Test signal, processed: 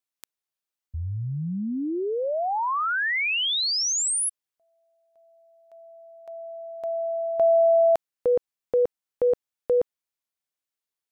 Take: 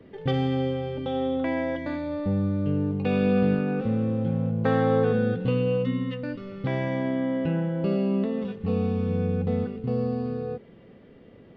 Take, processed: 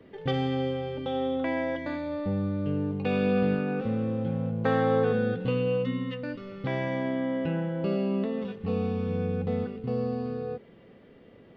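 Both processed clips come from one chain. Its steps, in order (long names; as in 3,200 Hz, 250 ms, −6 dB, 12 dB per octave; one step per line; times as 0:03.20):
low-shelf EQ 340 Hz −5 dB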